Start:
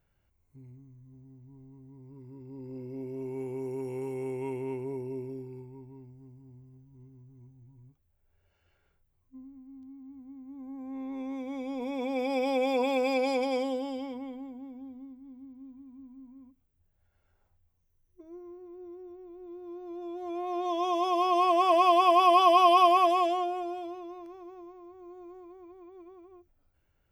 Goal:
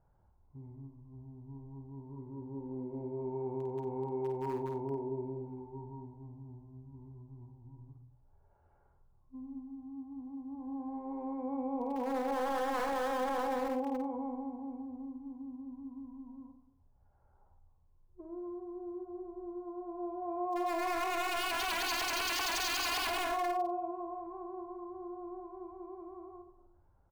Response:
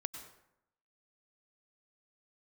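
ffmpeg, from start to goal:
-filter_complex "[0:a]lowpass=f=1200:w=0.5412,lowpass=f=1200:w=1.3066,asplit=2[s0][s1];[1:a]atrim=start_sample=2205,lowshelf=f=250:g=6[s2];[s1][s2]afir=irnorm=-1:irlink=0,volume=1.33[s3];[s0][s3]amix=inputs=2:normalize=0,aeval=exprs='0.106*(abs(mod(val(0)/0.106+3,4)-2)-1)':c=same,equalizer=f=890:t=o:w=0.6:g=9.5,acompressor=threshold=0.0141:ratio=1.5,aemphasis=mode=production:type=75kf,aecho=1:1:51|91:0.531|0.168,alimiter=limit=0.106:level=0:latency=1:release=21,volume=0.501"

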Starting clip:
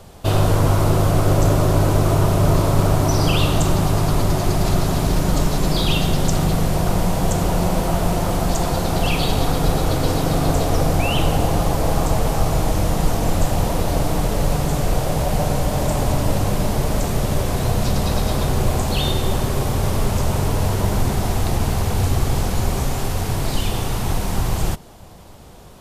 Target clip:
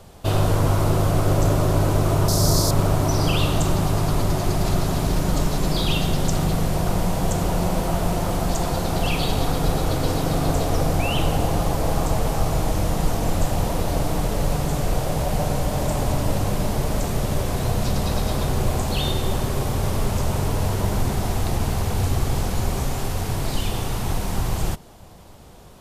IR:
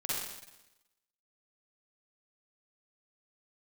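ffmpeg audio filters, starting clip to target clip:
-filter_complex "[0:a]asettb=1/sr,asplit=3[s0][s1][s2];[s0]atrim=end=2.284[s3];[s1]atrim=start=2.28:end=2.71,asetpts=PTS-STARTPTS,afade=t=in:d=0.004:c=qsin,afade=t=out:st=0.426:d=0.004:c=qsin,highshelf=f=3700:t=q:w=3:g=10[s4];[s2]atrim=start=2.706[s5];[s3][s4]acrossfade=d=0.004:c1=hsin:c2=qsin[s6];[s6][s5]acrossfade=d=0.004:c1=qsin:c2=hsin,volume=0.708"

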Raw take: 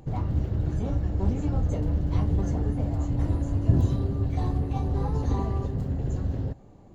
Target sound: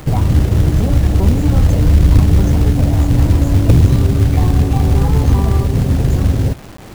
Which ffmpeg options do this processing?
-filter_complex "[0:a]asettb=1/sr,asplit=3[s0][s1][s2];[s0]atrim=end=1.694[s3];[s1]atrim=start=1.69:end=2.19,asetpts=PTS-STARTPTS,afade=t=in:d=0.004:c=qsin,afade=t=out:st=0.496:d=0.004:c=qsin,asubboost=boost=7.5:cutoff=150[s4];[s2]atrim=start=2.186[s5];[s3][s4]acrossfade=d=0.004:c1=hsin:c2=qsin[s6];[s6][s5]acrossfade=d=0.004:c1=qsin:c2=hsin,acrossover=split=220[s7][s8];[s7]acrusher=bits=5:mode=log:mix=0:aa=0.000001[s9];[s8]alimiter=level_in=2.11:limit=0.0631:level=0:latency=1:release=125,volume=0.473[s10];[s9][s10]amix=inputs=2:normalize=0,aeval=exprs='0.447*(cos(1*acos(clip(val(0)/0.447,-1,1)))-cos(1*PI/2))+0.0398*(cos(4*acos(clip(val(0)/0.447,-1,1)))-cos(4*PI/2))+0.2*(cos(5*acos(clip(val(0)/0.447,-1,1)))-cos(5*PI/2))+0.02*(cos(7*acos(clip(val(0)/0.447,-1,1)))-cos(7*PI/2))+0.0158*(cos(8*acos(clip(val(0)/0.447,-1,1)))-cos(8*PI/2))':c=same,acrusher=bits=6:mix=0:aa=0.000001,volume=2"

